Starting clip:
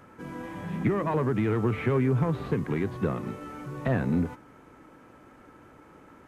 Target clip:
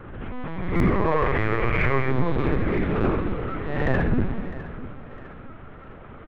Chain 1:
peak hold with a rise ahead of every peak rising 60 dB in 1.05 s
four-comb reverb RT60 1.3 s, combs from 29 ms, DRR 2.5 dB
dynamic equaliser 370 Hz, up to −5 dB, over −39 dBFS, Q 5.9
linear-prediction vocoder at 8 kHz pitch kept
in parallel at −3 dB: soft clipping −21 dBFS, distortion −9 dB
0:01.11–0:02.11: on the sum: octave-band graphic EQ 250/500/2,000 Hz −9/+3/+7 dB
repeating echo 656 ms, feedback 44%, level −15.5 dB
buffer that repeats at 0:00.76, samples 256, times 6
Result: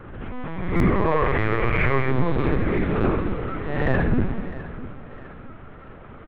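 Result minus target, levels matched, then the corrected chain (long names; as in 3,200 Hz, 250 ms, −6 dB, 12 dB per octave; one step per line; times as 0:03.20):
soft clipping: distortion −5 dB
peak hold with a rise ahead of every peak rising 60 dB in 1.05 s
four-comb reverb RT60 1.3 s, combs from 29 ms, DRR 2.5 dB
dynamic equaliser 370 Hz, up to −5 dB, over −39 dBFS, Q 5.9
linear-prediction vocoder at 8 kHz pitch kept
in parallel at −3 dB: soft clipping −28 dBFS, distortion −5 dB
0:01.11–0:02.11: on the sum: octave-band graphic EQ 250/500/2,000 Hz −9/+3/+7 dB
repeating echo 656 ms, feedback 44%, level −15.5 dB
buffer that repeats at 0:00.76, samples 256, times 6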